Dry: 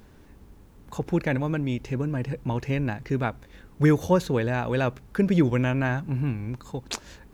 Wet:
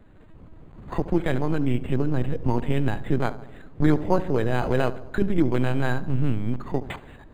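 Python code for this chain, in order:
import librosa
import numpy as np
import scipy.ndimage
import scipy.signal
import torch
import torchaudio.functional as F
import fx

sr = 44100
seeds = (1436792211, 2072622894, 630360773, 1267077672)

y = fx.recorder_agc(x, sr, target_db=-13.0, rise_db_per_s=9.4, max_gain_db=30)
y = fx.lpc_vocoder(y, sr, seeds[0], excitation='pitch_kept', order=10)
y = fx.air_absorb(y, sr, metres=200.0, at=(2.27, 2.7))
y = fx.echo_filtered(y, sr, ms=72, feedback_pct=66, hz=1500.0, wet_db=-15)
y = np.interp(np.arange(len(y)), np.arange(len(y))[::8], y[::8])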